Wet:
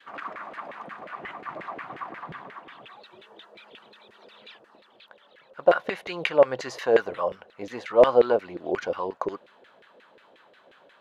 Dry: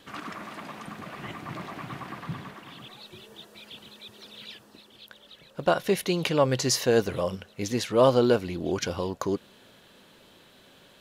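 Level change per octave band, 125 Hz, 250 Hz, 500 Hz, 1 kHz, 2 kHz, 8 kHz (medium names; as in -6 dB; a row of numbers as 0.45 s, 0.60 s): -14.0 dB, -6.5 dB, +3.0 dB, +2.0 dB, +2.5 dB, under -15 dB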